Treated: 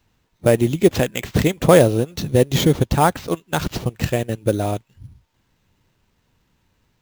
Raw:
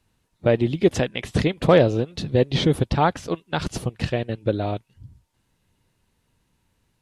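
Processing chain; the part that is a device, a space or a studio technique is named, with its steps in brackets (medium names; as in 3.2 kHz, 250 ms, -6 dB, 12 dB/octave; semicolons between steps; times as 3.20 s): early companding sampler (sample-rate reducer 10 kHz, jitter 0%; companded quantiser 8-bit); trim +3.5 dB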